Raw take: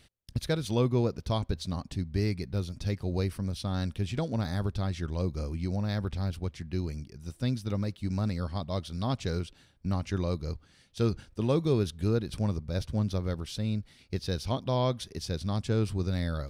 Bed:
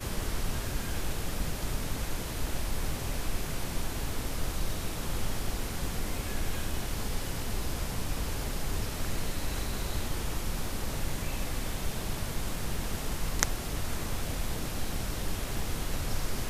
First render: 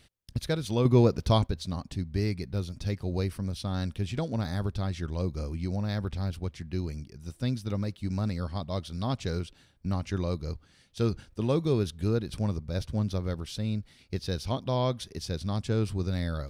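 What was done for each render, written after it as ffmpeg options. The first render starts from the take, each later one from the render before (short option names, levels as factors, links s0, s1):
-filter_complex "[0:a]asettb=1/sr,asplit=3[s0][s1][s2];[s0]atrim=end=0.854[s3];[s1]atrim=start=0.85:end=1.47,asetpts=PTS-STARTPTS,afade=t=in:d=0.004:c=qsin,afade=t=out:st=0.616:d=0.004:c=qsin,acontrast=64[s4];[s2]atrim=start=1.466[s5];[s3][s4]acrossfade=d=0.004:c1=hsin:c2=qsin[s6];[s6][s5]acrossfade=d=0.004:c1=qsin:c2=hsin"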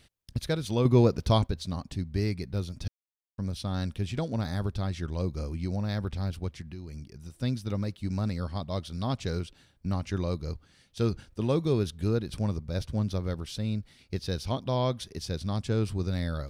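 -filter_complex "[0:a]asettb=1/sr,asplit=3[s0][s1][s2];[s0]atrim=end=6.614[s3];[s1]atrim=start=6.61:end=7.36,asetpts=PTS-STARTPTS,afade=t=in:d=0.004:c=qsin,afade=t=out:st=0.746:d=0.004:c=qsin,acompressor=threshold=0.0141:ratio=4:attack=3.2:release=140:knee=1:detection=peak[s4];[s2]atrim=start=7.356[s5];[s3][s4]acrossfade=d=0.004:c1=hsin:c2=qsin[s6];[s6][s5]acrossfade=d=0.004:c1=qsin:c2=hsin,asplit=3[s7][s8][s9];[s7]atrim=end=2.88,asetpts=PTS-STARTPTS,afade=t=out:st=2.876:d=0.004:c=hsin[s10];[s8]atrim=start=2.88:end=3.38,asetpts=PTS-STARTPTS,volume=0[s11];[s9]atrim=start=3.38,asetpts=PTS-STARTPTS,afade=t=in:d=0.004:c=hsin[s12];[s10][s11][s12]concat=n=3:v=0:a=1"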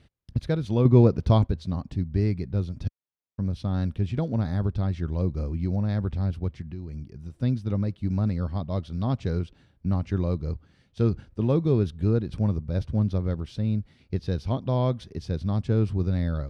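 -af "highpass=f=220:p=1,aemphasis=mode=reproduction:type=riaa"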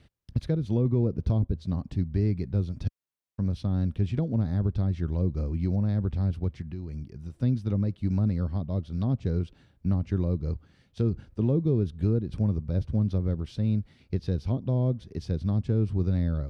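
-filter_complex "[0:a]acrossover=split=510[s0][s1];[s0]alimiter=limit=0.168:level=0:latency=1:release=201[s2];[s1]acompressor=threshold=0.00631:ratio=16[s3];[s2][s3]amix=inputs=2:normalize=0"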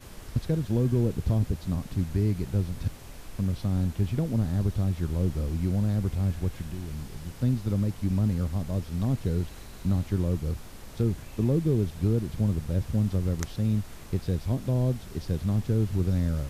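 -filter_complex "[1:a]volume=0.282[s0];[0:a][s0]amix=inputs=2:normalize=0"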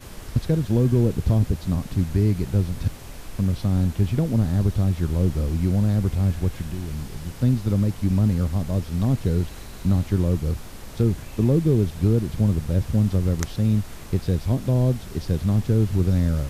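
-af "volume=1.88"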